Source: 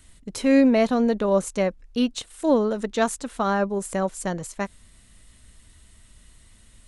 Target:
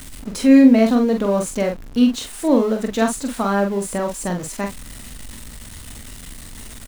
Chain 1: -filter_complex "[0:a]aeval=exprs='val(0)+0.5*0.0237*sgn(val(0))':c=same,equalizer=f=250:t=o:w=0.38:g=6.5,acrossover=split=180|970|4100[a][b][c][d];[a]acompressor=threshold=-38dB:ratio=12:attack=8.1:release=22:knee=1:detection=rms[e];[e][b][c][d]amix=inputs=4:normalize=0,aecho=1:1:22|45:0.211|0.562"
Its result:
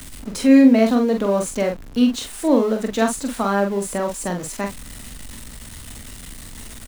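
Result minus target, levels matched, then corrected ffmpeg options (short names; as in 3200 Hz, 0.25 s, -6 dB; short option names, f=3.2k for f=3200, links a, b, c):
compressor: peak gain reduction +14.5 dB
-af "aeval=exprs='val(0)+0.5*0.0237*sgn(val(0))':c=same,equalizer=f=250:t=o:w=0.38:g=6.5,aecho=1:1:22|45:0.211|0.562"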